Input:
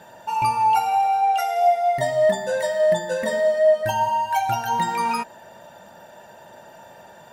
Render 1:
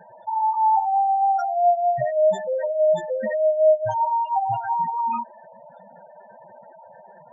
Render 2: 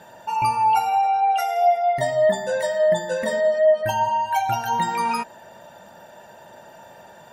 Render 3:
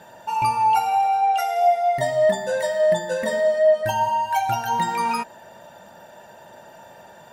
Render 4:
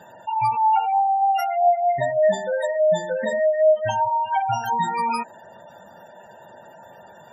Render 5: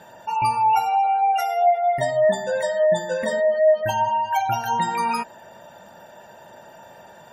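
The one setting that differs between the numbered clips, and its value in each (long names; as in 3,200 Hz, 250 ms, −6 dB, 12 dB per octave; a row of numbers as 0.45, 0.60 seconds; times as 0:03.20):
gate on every frequency bin, under each frame's peak: −10, −45, −60, −20, −35 decibels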